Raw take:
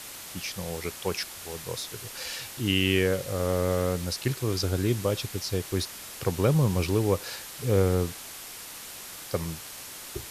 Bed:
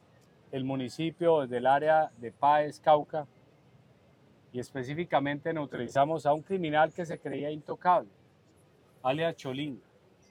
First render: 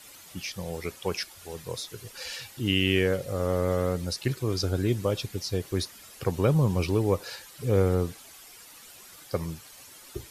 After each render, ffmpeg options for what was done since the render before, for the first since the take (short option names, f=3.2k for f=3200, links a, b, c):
-af "afftdn=nr=11:nf=-42"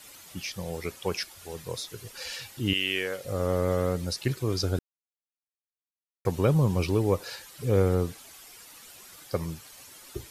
-filter_complex "[0:a]asettb=1/sr,asplit=3[a][b][c];[a]atrim=end=2.734[d];[b]atrim=start=2.73:end=3.25,asetpts=PTS-STARTPTS,afade=t=in:d=0.004:c=qsin,afade=t=out:st=0.516:d=0.004:c=qsin,highpass=f=1k:p=1[e];[c]atrim=start=3.246[f];[d][e]acrossfade=d=0.004:c1=hsin:c2=qsin[g];[g][f]acrossfade=d=0.004:c1=qsin:c2=hsin,asplit=3[h][i][j];[h]atrim=end=4.79,asetpts=PTS-STARTPTS,afade=t=out:st=4.786:d=0.004:c=hsin[k];[i]atrim=start=4.79:end=6.25,asetpts=PTS-STARTPTS,volume=0[l];[j]atrim=start=6.25,asetpts=PTS-STARTPTS,afade=t=in:d=0.004:c=hsin[m];[k][l][m]concat=n=3:v=0:a=1"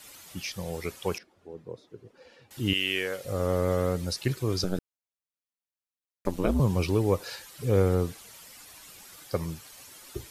-filter_complex "[0:a]asettb=1/sr,asplit=3[a][b][c];[a]atrim=end=1.184[d];[b]atrim=start=1.18:end=2.51,asetpts=PTS-STARTPTS,afade=t=in:d=0.004:c=qsin,afade=t=out:st=1.326:d=0.004:c=qsin,bandpass=f=300:t=q:w=1.2[e];[c]atrim=start=2.506[f];[d][e]acrossfade=d=0.004:c1=hsin:c2=qsin[g];[g][f]acrossfade=d=0.004:c1=qsin:c2=hsin,asettb=1/sr,asplit=3[h][i][j];[h]atrim=end=4.644[k];[i]atrim=start=4.64:end=6.6,asetpts=PTS-STARTPTS,afade=t=in:d=0.004:c=qsin,afade=t=out:st=1.956:d=0.004:c=qsin,aeval=exprs='val(0)*sin(2*PI*91*n/s)':c=same[l];[j]atrim=start=6.596[m];[k][l]acrossfade=d=0.004:c1=hsin:c2=qsin[n];[n][m]acrossfade=d=0.004:c1=qsin:c2=hsin,asettb=1/sr,asplit=3[o][p][q];[o]atrim=end=8.214[r];[p]atrim=start=8.21:end=9.05,asetpts=PTS-STARTPTS,afade=t=in:d=0.004:c=qsin,afade=t=out:st=0.836:d=0.004:c=qsin,afreqshift=-200[s];[q]atrim=start=9.046[t];[r][s]acrossfade=d=0.004:c1=hsin:c2=qsin[u];[u][t]acrossfade=d=0.004:c1=qsin:c2=hsin"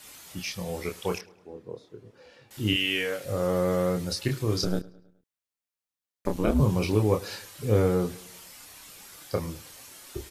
-filter_complex "[0:a]asplit=2[a][b];[b]adelay=28,volume=-4.5dB[c];[a][c]amix=inputs=2:normalize=0,asplit=2[d][e];[e]adelay=105,lowpass=f=4.5k:p=1,volume=-22dB,asplit=2[f][g];[g]adelay=105,lowpass=f=4.5k:p=1,volume=0.52,asplit=2[h][i];[i]adelay=105,lowpass=f=4.5k:p=1,volume=0.52,asplit=2[j][k];[k]adelay=105,lowpass=f=4.5k:p=1,volume=0.52[l];[d][f][h][j][l]amix=inputs=5:normalize=0"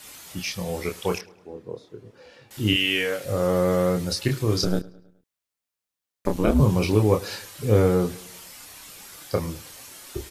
-af "volume=4dB"